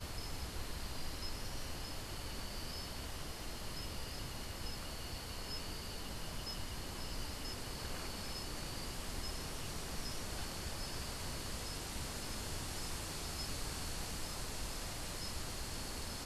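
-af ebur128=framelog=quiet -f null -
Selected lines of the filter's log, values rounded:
Integrated loudness:
  I:         -43.2 LUFS
  Threshold: -53.2 LUFS
Loudness range:
  LRA:         2.4 LU
  Threshold: -63.2 LUFS
  LRA low:   -44.4 LUFS
  LRA high:  -42.0 LUFS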